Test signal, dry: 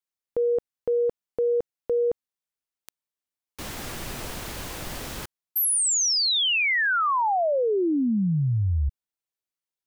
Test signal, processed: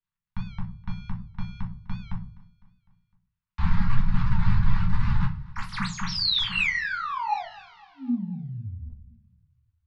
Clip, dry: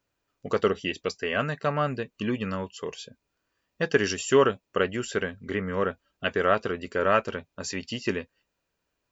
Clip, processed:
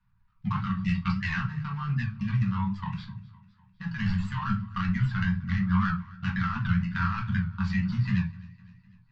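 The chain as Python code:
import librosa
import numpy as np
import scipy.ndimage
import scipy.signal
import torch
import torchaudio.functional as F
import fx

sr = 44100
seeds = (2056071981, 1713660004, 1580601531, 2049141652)

y = scipy.ndimage.median_filter(x, 15, mode='constant')
y = scipy.signal.sosfilt(scipy.signal.cheby2(6, 70, [300.0, 600.0], 'bandstop', fs=sr, output='sos'), y)
y = fx.dereverb_blind(y, sr, rt60_s=0.71)
y = scipy.signal.sosfilt(scipy.signal.butter(4, 4400.0, 'lowpass', fs=sr, output='sos'), y)
y = fx.low_shelf(y, sr, hz=240.0, db=10.5)
y = fx.over_compress(y, sr, threshold_db=-32.0, ratio=-1.0)
y = fx.echo_feedback(y, sr, ms=253, feedback_pct=57, wet_db=-22)
y = fx.room_shoebox(y, sr, seeds[0], volume_m3=190.0, walls='furnished', distance_m=1.8)
y = fx.record_warp(y, sr, rpm=78.0, depth_cents=100.0)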